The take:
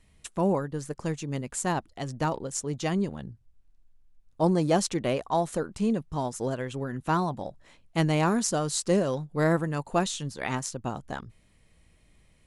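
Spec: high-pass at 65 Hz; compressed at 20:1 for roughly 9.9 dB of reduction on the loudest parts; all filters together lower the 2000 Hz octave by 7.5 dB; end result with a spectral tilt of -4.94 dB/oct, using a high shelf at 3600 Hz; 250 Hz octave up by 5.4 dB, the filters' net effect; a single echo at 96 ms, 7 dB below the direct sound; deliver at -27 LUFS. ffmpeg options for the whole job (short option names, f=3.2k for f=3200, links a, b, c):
-af "highpass=65,equalizer=f=250:t=o:g=8,equalizer=f=2k:t=o:g=-8,highshelf=f=3.6k:g=-8,acompressor=threshold=-25dB:ratio=20,aecho=1:1:96:0.447,volume=4.5dB"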